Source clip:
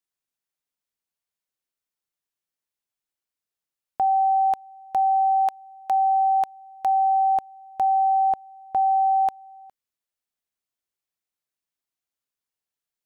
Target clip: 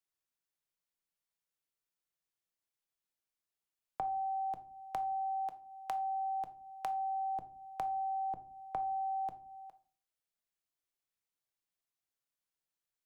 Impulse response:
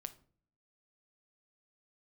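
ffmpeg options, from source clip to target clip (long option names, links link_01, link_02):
-filter_complex "[0:a]equalizer=frequency=230:width_type=o:width=0.35:gain=-3.5,acrossover=split=120|380[link_01][link_02][link_03];[link_03]acompressor=threshold=-34dB:ratio=6[link_04];[link_01][link_02][link_04]amix=inputs=3:normalize=0[link_05];[1:a]atrim=start_sample=2205,afade=type=out:start_time=0.42:duration=0.01,atrim=end_sample=18963[link_06];[link_05][link_06]afir=irnorm=-1:irlink=0"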